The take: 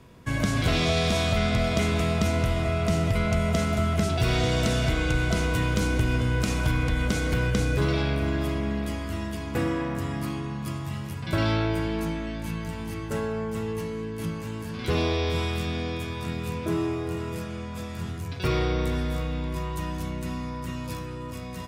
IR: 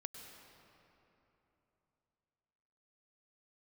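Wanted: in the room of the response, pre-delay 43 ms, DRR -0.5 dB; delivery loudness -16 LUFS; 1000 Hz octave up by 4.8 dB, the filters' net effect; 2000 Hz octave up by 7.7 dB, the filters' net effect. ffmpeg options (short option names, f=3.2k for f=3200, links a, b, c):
-filter_complex "[0:a]equalizer=f=1k:t=o:g=3.5,equalizer=f=2k:t=o:g=9,asplit=2[a][b];[1:a]atrim=start_sample=2205,adelay=43[c];[b][c]afir=irnorm=-1:irlink=0,volume=4dB[d];[a][d]amix=inputs=2:normalize=0,volume=5.5dB"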